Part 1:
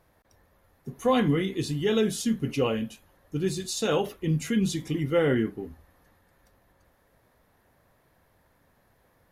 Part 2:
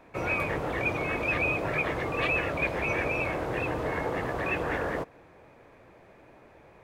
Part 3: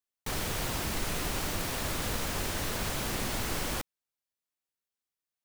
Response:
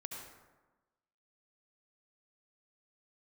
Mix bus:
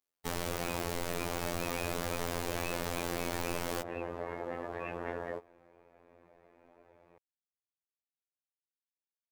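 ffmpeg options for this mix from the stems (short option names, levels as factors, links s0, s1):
-filter_complex "[1:a]flanger=delay=7.6:depth=4:regen=38:speed=0.95:shape=triangular,adelay=350,volume=0.473[s0];[2:a]volume=1.19[s1];[s0][s1]amix=inputs=2:normalize=0,equalizer=f=500:t=o:w=2.4:g=7.5,acompressor=threshold=0.0316:ratio=3,volume=1,afftfilt=real='hypot(re,im)*cos(PI*b)':imag='0':win_size=2048:overlap=0.75"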